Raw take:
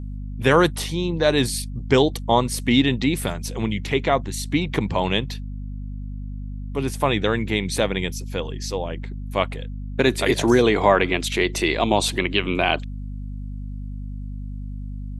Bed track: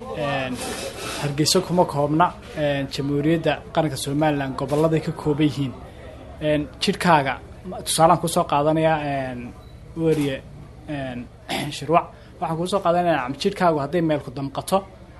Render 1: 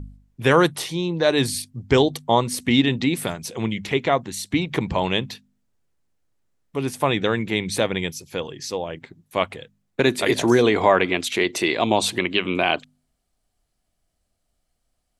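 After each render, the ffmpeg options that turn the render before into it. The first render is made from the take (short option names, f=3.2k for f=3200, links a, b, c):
-af "bandreject=f=50:t=h:w=4,bandreject=f=100:t=h:w=4,bandreject=f=150:t=h:w=4,bandreject=f=200:t=h:w=4,bandreject=f=250:t=h:w=4"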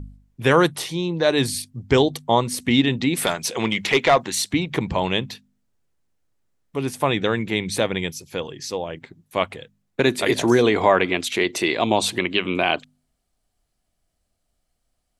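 -filter_complex "[0:a]asplit=3[a][b][c];[a]afade=t=out:st=3.16:d=0.02[d];[b]asplit=2[e][f];[f]highpass=f=720:p=1,volume=15dB,asoftclip=type=tanh:threshold=-5dB[g];[e][g]amix=inputs=2:normalize=0,lowpass=f=7.1k:p=1,volume=-6dB,afade=t=in:st=3.16:d=0.02,afade=t=out:st=4.51:d=0.02[h];[c]afade=t=in:st=4.51:d=0.02[i];[d][h][i]amix=inputs=3:normalize=0"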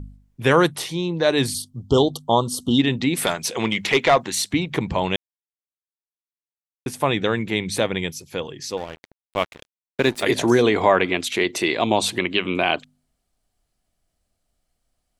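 -filter_complex "[0:a]asplit=3[a][b][c];[a]afade=t=out:st=1.53:d=0.02[d];[b]asuperstop=centerf=2000:order=20:qfactor=1.3,afade=t=in:st=1.53:d=0.02,afade=t=out:st=2.78:d=0.02[e];[c]afade=t=in:st=2.78:d=0.02[f];[d][e][f]amix=inputs=3:normalize=0,asettb=1/sr,asplit=3[g][h][i];[g]atrim=end=8.774[j];[h]atrim=start=8.77:end=10.23,asetpts=PTS-STARTPTS,afade=t=in:d=0.004:c=qsin,afade=t=out:st=1.456:d=0.004:c=qsin,aeval=exprs='sgn(val(0))*max(abs(val(0))-0.02,0)':c=same[k];[i]atrim=start=10.226[l];[j][k]acrossfade=d=0.004:c1=hsin:c2=qsin[m];[m][l]acrossfade=d=0.004:c1=qsin:c2=hsin,asplit=3[n][o][p];[n]atrim=end=5.16,asetpts=PTS-STARTPTS,afade=t=out:st=5.156:d=0.004:c=hsin[q];[o]atrim=start=5.16:end=6.86,asetpts=PTS-STARTPTS,volume=0[r];[p]atrim=start=6.86,asetpts=PTS-STARTPTS,afade=t=in:d=0.004:c=hsin[s];[q][r][s]concat=n=3:v=0:a=1"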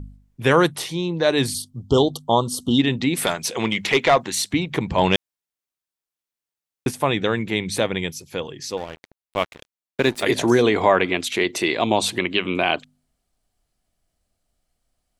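-filter_complex "[0:a]asplit=3[a][b][c];[a]afade=t=out:st=4.97:d=0.02[d];[b]acontrast=47,afade=t=in:st=4.97:d=0.02,afade=t=out:st=6.9:d=0.02[e];[c]afade=t=in:st=6.9:d=0.02[f];[d][e][f]amix=inputs=3:normalize=0"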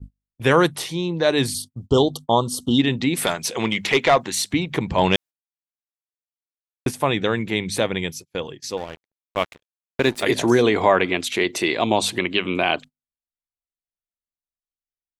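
-af "agate=range=-32dB:threshold=-35dB:ratio=16:detection=peak"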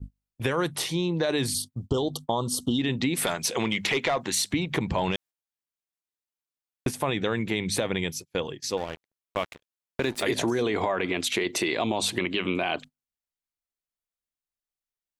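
-af "alimiter=limit=-11.5dB:level=0:latency=1:release=11,acompressor=threshold=-22dB:ratio=6"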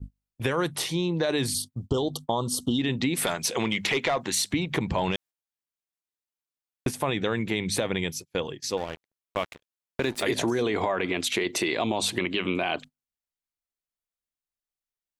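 -af anull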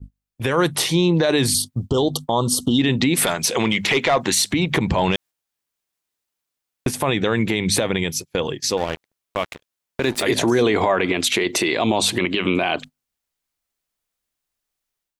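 -af "dynaudnorm=f=300:g=3:m=11.5dB,alimiter=limit=-8.5dB:level=0:latency=1:release=97"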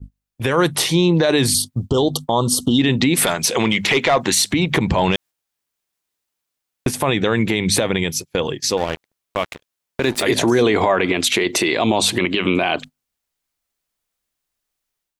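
-af "volume=2dB"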